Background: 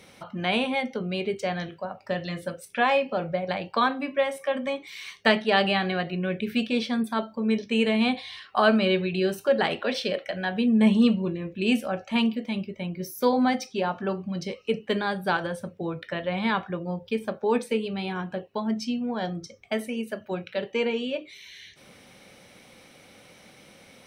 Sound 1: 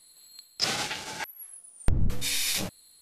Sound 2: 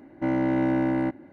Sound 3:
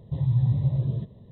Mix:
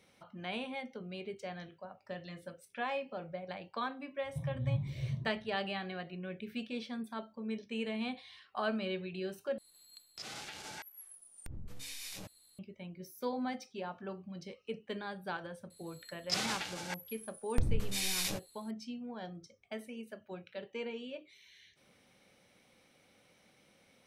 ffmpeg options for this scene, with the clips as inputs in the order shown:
ffmpeg -i bed.wav -i cue0.wav -i cue1.wav -i cue2.wav -filter_complex "[1:a]asplit=2[link_01][link_02];[0:a]volume=-14.5dB[link_03];[3:a]asplit=2[link_04][link_05];[link_05]afreqshift=2.7[link_06];[link_04][link_06]amix=inputs=2:normalize=1[link_07];[link_01]acompressor=threshold=-31dB:ratio=10:attack=1:release=79:knee=1:detection=rms[link_08];[link_03]asplit=2[link_09][link_10];[link_09]atrim=end=9.584[link_11];[link_08]atrim=end=3.01,asetpts=PTS-STARTPTS,volume=-8dB[link_12];[link_10]atrim=start=12.586[link_13];[link_07]atrim=end=1.31,asetpts=PTS-STARTPTS,volume=-9.5dB,afade=type=in:duration=0.004:curve=hsin,afade=type=out:start_time=1.306:duration=0.004:curve=hsin,adelay=4240[link_14];[link_02]atrim=end=3.01,asetpts=PTS-STARTPTS,volume=-6.5dB,afade=type=in:duration=0.004:curve=hsin,afade=type=out:start_time=3.006:duration=0.004:curve=hsin,adelay=15700[link_15];[link_11][link_12]acrossfade=duration=0.004:curve1=hsin:curve2=hsin[link_16];[link_16][link_13]acrossfade=duration=0.004:curve1=hsin:curve2=hsin[link_17];[link_17][link_14][link_15]amix=inputs=3:normalize=0" out.wav

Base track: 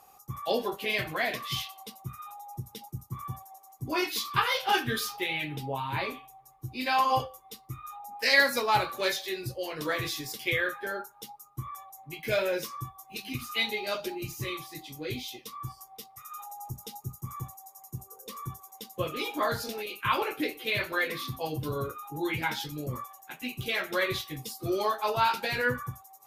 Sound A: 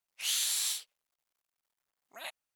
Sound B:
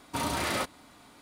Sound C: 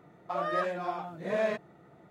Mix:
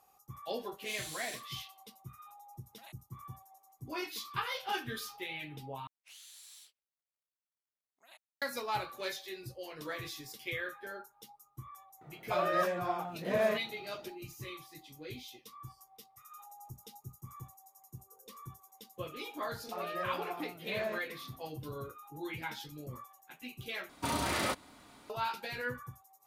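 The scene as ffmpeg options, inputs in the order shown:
ffmpeg -i bed.wav -i cue0.wav -i cue1.wav -i cue2.wav -filter_complex "[1:a]asplit=2[link_01][link_02];[3:a]asplit=2[link_03][link_04];[0:a]volume=-10dB[link_05];[link_02]acompressor=threshold=-35dB:ratio=6:attack=3.2:release=140:knee=1:detection=peak[link_06];[link_05]asplit=3[link_07][link_08][link_09];[link_07]atrim=end=5.874[link_10];[link_06]atrim=end=2.55,asetpts=PTS-STARTPTS,volume=-15.5dB[link_11];[link_08]atrim=start=8.416:end=23.894[link_12];[2:a]atrim=end=1.21,asetpts=PTS-STARTPTS,volume=-2.5dB[link_13];[link_09]atrim=start=25.096[link_14];[link_01]atrim=end=2.55,asetpts=PTS-STARTPTS,volume=-13.5dB,afade=type=in:duration=0.004:curve=hsin,afade=type=out:start_time=2.546:duration=0.004:curve=hsin,adelay=620[link_15];[link_03]atrim=end=2.1,asetpts=PTS-STARTPTS,volume=-0.5dB,afade=type=in:duration=0.004:curve=hsin,afade=type=out:start_time=2.096:duration=0.004:curve=hsin,adelay=12010[link_16];[link_04]atrim=end=2.1,asetpts=PTS-STARTPTS,volume=-8dB,afade=type=in:duration=0.004:curve=hsin,afade=type=out:start_time=2.096:duration=0.004:curve=hsin,adelay=19420[link_17];[link_10][link_11]acrossfade=duration=0.004:curve1=hsin:curve2=hsin[link_18];[link_18][link_12]acrossfade=duration=0.004:curve1=hsin:curve2=hsin[link_19];[link_19][link_13]acrossfade=duration=0.004:curve1=hsin:curve2=hsin[link_20];[link_20][link_14]acrossfade=duration=0.004:curve1=hsin:curve2=hsin[link_21];[link_21][link_15][link_16][link_17]amix=inputs=4:normalize=0" out.wav

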